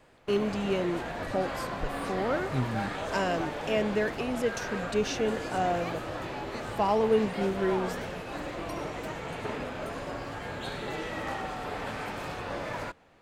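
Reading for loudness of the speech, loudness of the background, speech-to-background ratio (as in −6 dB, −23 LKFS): −30.5 LKFS, −35.5 LKFS, 5.0 dB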